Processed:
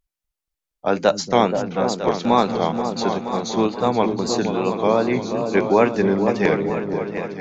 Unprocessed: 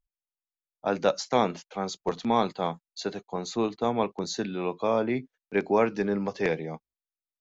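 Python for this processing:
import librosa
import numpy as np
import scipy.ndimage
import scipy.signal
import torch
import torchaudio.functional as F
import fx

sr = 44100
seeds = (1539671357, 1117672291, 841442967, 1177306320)

y = fx.echo_opening(x, sr, ms=239, hz=200, octaves=2, feedback_pct=70, wet_db=-3)
y = fx.wow_flutter(y, sr, seeds[0], rate_hz=2.1, depth_cents=74.0)
y = y * 10.0 ** (7.0 / 20.0)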